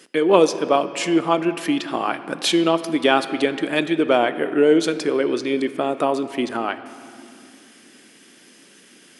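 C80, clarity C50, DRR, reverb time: 13.0 dB, 12.5 dB, 11.0 dB, 2.6 s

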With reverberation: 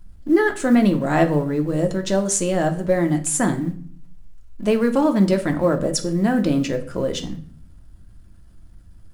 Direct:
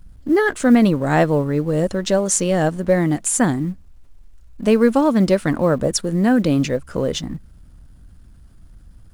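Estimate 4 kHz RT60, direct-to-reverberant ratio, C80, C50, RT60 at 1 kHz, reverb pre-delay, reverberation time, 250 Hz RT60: 0.40 s, 5.0 dB, 17.0 dB, 13.5 dB, 0.50 s, 3 ms, 0.55 s, 0.80 s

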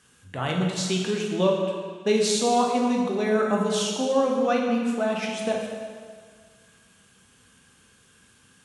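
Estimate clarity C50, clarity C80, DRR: 2.0 dB, 3.5 dB, −0.5 dB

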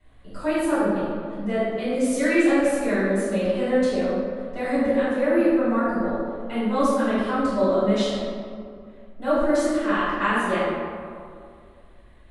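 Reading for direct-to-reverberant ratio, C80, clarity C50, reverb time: −15.5 dB, −1.0 dB, −4.0 dB, 2.3 s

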